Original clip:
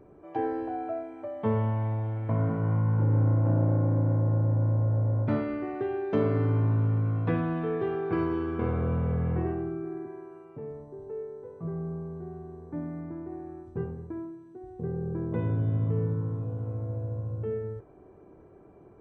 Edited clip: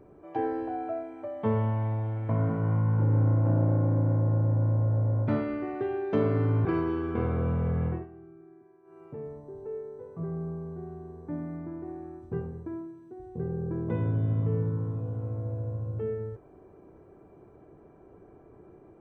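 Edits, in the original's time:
0:06.65–0:08.09: remove
0:09.30–0:10.47: duck −16.5 dB, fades 0.20 s

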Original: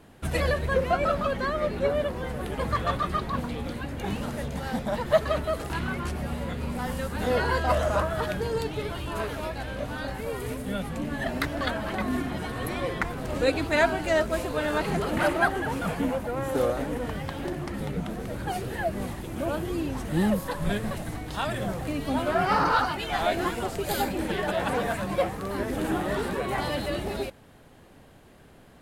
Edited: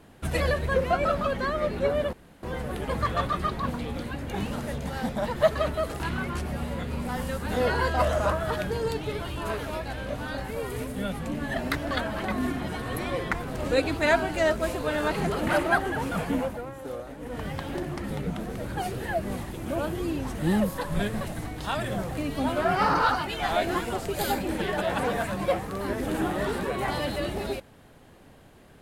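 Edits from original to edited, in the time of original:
0:02.13: splice in room tone 0.30 s
0:16.13–0:17.18: duck −11 dB, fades 0.30 s

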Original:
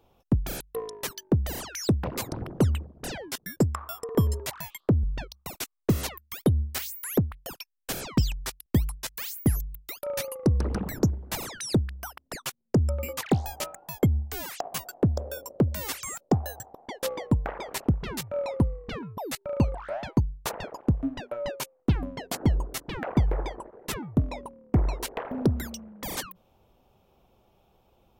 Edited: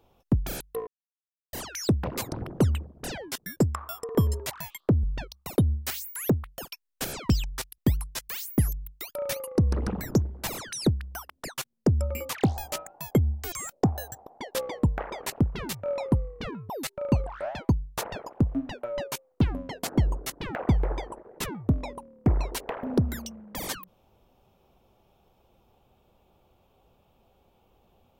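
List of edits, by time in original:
0:00.87–0:01.53: silence
0:05.58–0:06.46: remove
0:14.40–0:16.00: remove

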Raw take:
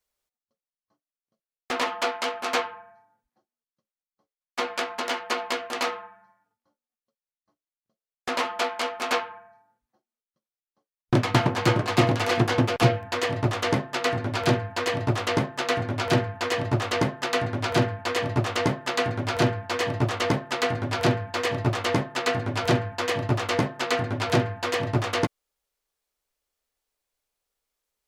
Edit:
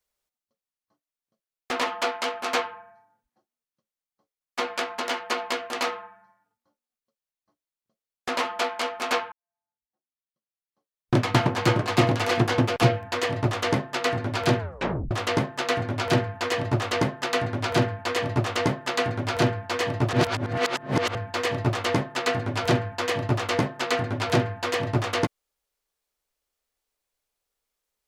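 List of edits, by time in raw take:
0:09.32–0:11.18: fade in quadratic
0:14.59: tape stop 0.52 s
0:20.13–0:21.15: reverse

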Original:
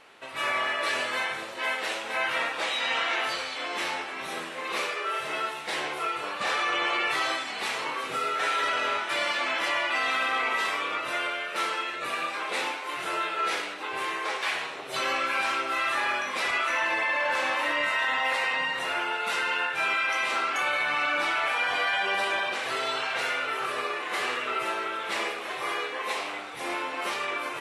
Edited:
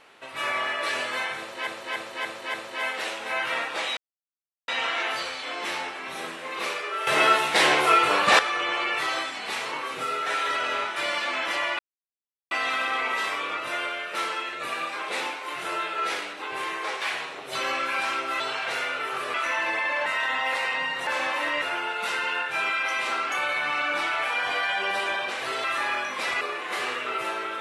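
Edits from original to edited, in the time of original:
0:01.38–0:01.67: repeat, 5 plays
0:02.81: splice in silence 0.71 s
0:05.20–0:06.52: clip gain +11.5 dB
0:09.92: splice in silence 0.72 s
0:15.81–0:16.58: swap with 0:22.88–0:23.82
0:17.30–0:17.85: move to 0:18.86

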